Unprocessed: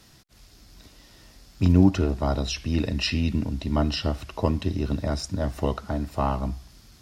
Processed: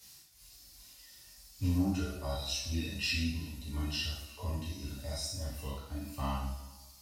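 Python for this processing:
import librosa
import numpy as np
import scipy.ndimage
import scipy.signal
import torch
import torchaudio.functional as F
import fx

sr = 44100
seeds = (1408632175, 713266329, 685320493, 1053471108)

p1 = librosa.effects.preemphasis(x, coef=0.9, zi=[0.0])
p2 = fx.dereverb_blind(p1, sr, rt60_s=1.9)
p3 = fx.hpss(p2, sr, part='percussive', gain_db=-16)
p4 = fx.leveller(p3, sr, passes=1)
p5 = p4 + fx.echo_single(p4, sr, ms=357, db=-22.0, dry=0)
y = fx.rev_double_slope(p5, sr, seeds[0], early_s=0.73, late_s=2.6, knee_db=-26, drr_db=-9.0)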